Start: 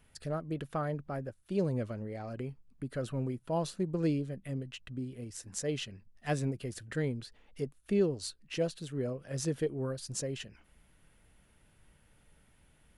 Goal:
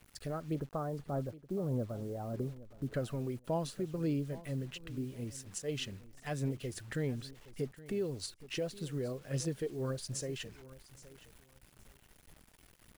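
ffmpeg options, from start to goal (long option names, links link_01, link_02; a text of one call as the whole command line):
ffmpeg -i in.wav -filter_complex "[0:a]asettb=1/sr,asplit=3[link_01][link_02][link_03];[link_01]atrim=end=0.554[link_04];[link_02]atrim=start=0.55:end=2.94,asetpts=PTS-STARTPTS,afade=type=in:duration=0.004:curve=qsin,afade=type=out:start_time=2.386:duration=0.004:curve=qsin,lowpass=frequency=1200:width=0.5412,lowpass=frequency=1200:width=1.3066[link_05];[link_03]atrim=start=2.936[link_06];[link_04][link_05]acrossfade=duration=0.004:curve1=hsin:curve2=qsin[link_07];[link_07][link_06]acrossfade=duration=0.004:curve1=qsin:curve2=hsin,alimiter=level_in=4dB:limit=-24dB:level=0:latency=1:release=259,volume=-4dB,acrusher=bits=9:mix=0:aa=0.000001,aphaser=in_gain=1:out_gain=1:delay=2.8:decay=0.26:speed=1.7:type=sinusoidal,aecho=1:1:819|1638:0.126|0.0252" out.wav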